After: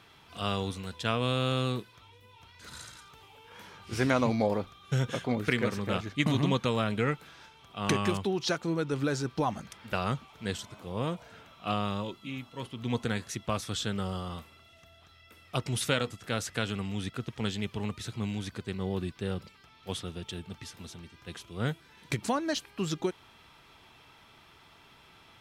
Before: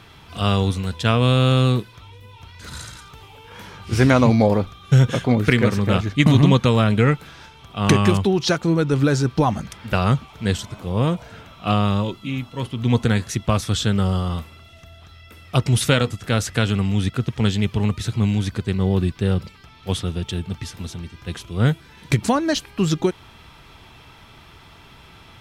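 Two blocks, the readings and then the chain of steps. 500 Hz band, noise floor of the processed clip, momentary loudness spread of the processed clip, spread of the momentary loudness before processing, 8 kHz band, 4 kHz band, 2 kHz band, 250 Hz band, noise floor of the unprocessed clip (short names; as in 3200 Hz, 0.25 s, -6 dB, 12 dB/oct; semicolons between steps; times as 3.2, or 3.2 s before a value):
-10.0 dB, -58 dBFS, 17 LU, 14 LU, -9.0 dB, -9.0 dB, -9.0 dB, -12.5 dB, -47 dBFS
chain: low shelf 150 Hz -11 dB; gain -9 dB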